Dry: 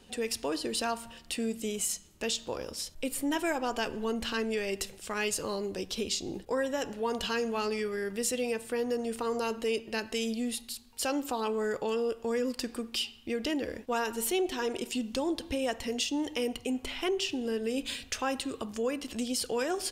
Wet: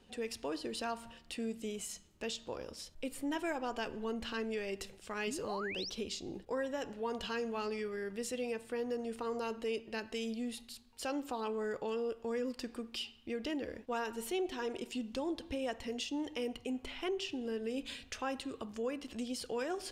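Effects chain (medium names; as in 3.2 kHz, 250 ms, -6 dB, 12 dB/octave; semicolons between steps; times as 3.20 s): treble shelf 6.2 kHz -10 dB; reverse; upward compressor, threshold -40 dBFS; reverse; painted sound rise, 5.27–5.90 s, 200–6000 Hz -36 dBFS; trim -6 dB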